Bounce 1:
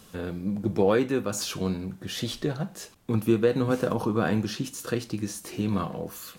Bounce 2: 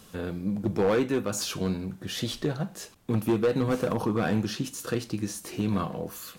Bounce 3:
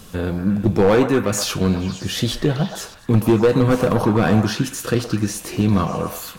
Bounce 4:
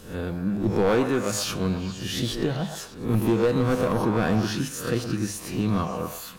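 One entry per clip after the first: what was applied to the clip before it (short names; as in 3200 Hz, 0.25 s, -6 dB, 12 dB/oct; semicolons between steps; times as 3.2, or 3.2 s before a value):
hard clip -18.5 dBFS, distortion -13 dB
low shelf 81 Hz +10.5 dB; delay with a stepping band-pass 0.118 s, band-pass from 810 Hz, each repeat 0.7 oct, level -3.5 dB; gain +8.5 dB
spectral swells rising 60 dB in 0.44 s; notches 50/100/150 Hz; gain -7.5 dB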